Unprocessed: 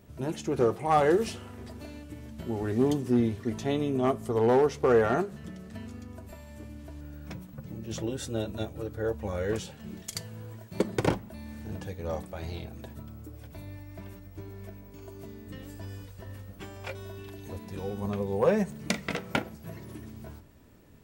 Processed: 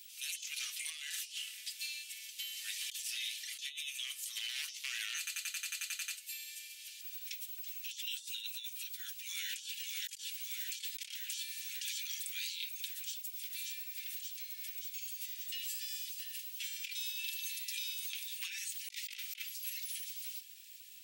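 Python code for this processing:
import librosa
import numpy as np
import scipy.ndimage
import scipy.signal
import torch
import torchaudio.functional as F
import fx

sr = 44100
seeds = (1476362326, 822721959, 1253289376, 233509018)

y = fx.echo_throw(x, sr, start_s=8.77, length_s=0.95, ms=580, feedback_pct=75, wet_db=-3.5)
y = fx.edit(y, sr, fx.stutter_over(start_s=5.18, slice_s=0.09, count=11), tone=tone)
y = scipy.signal.sosfilt(scipy.signal.butter(6, 2600.0, 'highpass', fs=sr, output='sos'), y)
y = y + 0.42 * np.pad(y, (int(4.6 * sr / 1000.0), 0))[:len(y)]
y = fx.over_compress(y, sr, threshold_db=-53.0, ratio=-1.0)
y = F.gain(torch.from_numpy(y), 11.0).numpy()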